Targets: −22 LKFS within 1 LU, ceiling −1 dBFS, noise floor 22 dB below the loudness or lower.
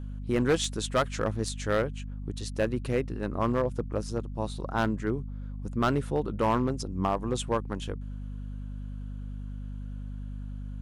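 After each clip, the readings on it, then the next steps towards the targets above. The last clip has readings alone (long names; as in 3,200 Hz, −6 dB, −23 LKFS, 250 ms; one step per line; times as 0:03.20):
share of clipped samples 0.7%; peaks flattened at −18.5 dBFS; mains hum 50 Hz; hum harmonics up to 250 Hz; level of the hum −35 dBFS; integrated loudness −31.0 LKFS; sample peak −18.5 dBFS; target loudness −22.0 LKFS
→ clipped peaks rebuilt −18.5 dBFS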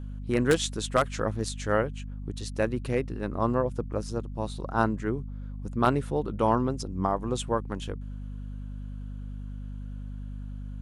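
share of clipped samples 0.0%; mains hum 50 Hz; hum harmonics up to 250 Hz; level of the hum −34 dBFS
→ mains-hum notches 50/100/150/200/250 Hz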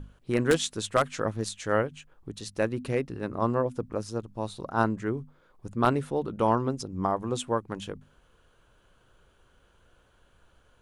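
mains hum none found; integrated loudness −29.0 LKFS; sample peak −9.0 dBFS; target loudness −22.0 LKFS
→ level +7 dB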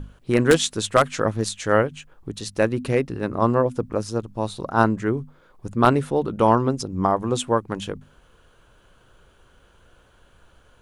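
integrated loudness −22.0 LKFS; sample peak −2.0 dBFS; background noise floor −57 dBFS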